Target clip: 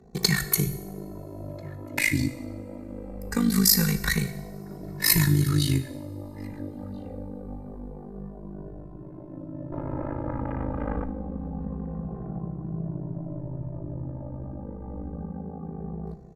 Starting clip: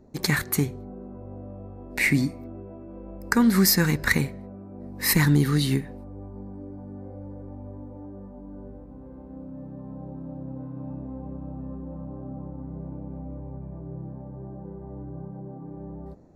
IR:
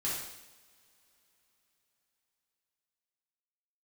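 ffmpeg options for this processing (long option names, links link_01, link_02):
-filter_complex "[0:a]acrossover=split=130|3000[link_01][link_02][link_03];[link_02]acompressor=threshold=-28dB:ratio=6[link_04];[link_01][link_04][link_03]amix=inputs=3:normalize=0,asettb=1/sr,asplit=3[link_05][link_06][link_07];[link_05]atrim=end=9.724[link_08];[link_06]atrim=start=9.72:end=11.05,asetpts=PTS-STARTPTS,afade=type=in:duration=0.004:curve=qsin,afade=type=out:start_time=1.326:duration=0.004:curve=qsin,aeval=exprs='0.0501*(cos(1*acos(clip(val(0)/0.0501,-1,1)))-cos(1*PI/2))+0.0251*(cos(6*acos(clip(val(0)/0.0501,-1,1)))-cos(6*PI/2))':channel_layout=same[link_09];[link_07]atrim=start=11.046[link_10];[link_08][link_09]acrossfade=duration=0.004:curve1=hsin:curve2=qsin[link_11];[link_11][link_10]acrossfade=duration=0.004:curve1=qsin:curve2=hsin,tremolo=f=52:d=0.974,asplit=2[link_12][link_13];[link_13]adelay=1341,volume=-18dB,highshelf=frequency=4000:gain=-30.2[link_14];[link_12][link_14]amix=inputs=2:normalize=0,asplit=2[link_15][link_16];[1:a]atrim=start_sample=2205,highshelf=frequency=7100:gain=6[link_17];[link_16][link_17]afir=irnorm=-1:irlink=0,volume=-15dB[link_18];[link_15][link_18]amix=inputs=2:normalize=0,aresample=32000,aresample=44100,asplit=2[link_19][link_20];[link_20]adelay=2.2,afreqshift=-0.25[link_21];[link_19][link_21]amix=inputs=2:normalize=1,volume=8dB"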